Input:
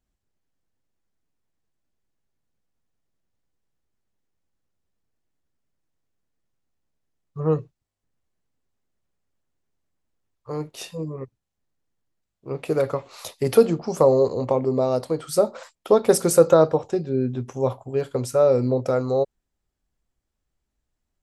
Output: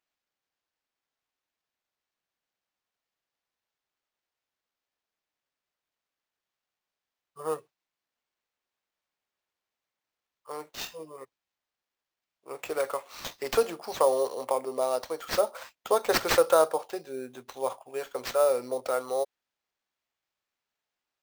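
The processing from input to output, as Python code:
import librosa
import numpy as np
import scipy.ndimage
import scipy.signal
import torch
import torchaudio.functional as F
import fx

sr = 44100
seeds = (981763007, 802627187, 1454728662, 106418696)

y = scipy.signal.sosfilt(scipy.signal.butter(2, 750.0, 'highpass', fs=sr, output='sos'), x)
y = fx.sample_hold(y, sr, seeds[0], rate_hz=10000.0, jitter_pct=0)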